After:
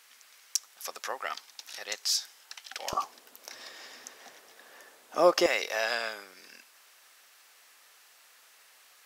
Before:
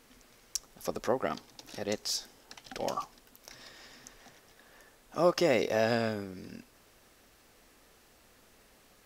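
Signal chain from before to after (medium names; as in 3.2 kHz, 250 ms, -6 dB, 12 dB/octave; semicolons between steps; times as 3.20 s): high-pass 1.3 kHz 12 dB/octave, from 2.93 s 410 Hz, from 5.46 s 1.1 kHz; trim +5.5 dB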